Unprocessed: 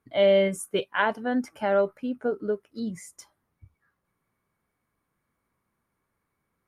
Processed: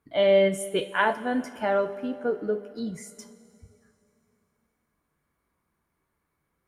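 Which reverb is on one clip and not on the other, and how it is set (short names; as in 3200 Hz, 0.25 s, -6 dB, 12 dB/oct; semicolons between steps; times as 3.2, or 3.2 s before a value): two-slope reverb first 0.26 s, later 2.9 s, from -18 dB, DRR 6.5 dB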